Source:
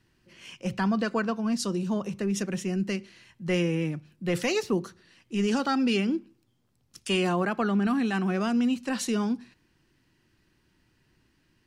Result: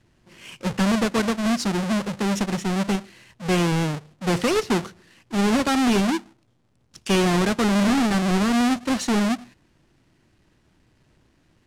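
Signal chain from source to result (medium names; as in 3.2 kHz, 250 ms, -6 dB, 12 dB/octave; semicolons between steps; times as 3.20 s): square wave that keeps the level; low-pass 9.2 kHz 12 dB/octave; trim +1 dB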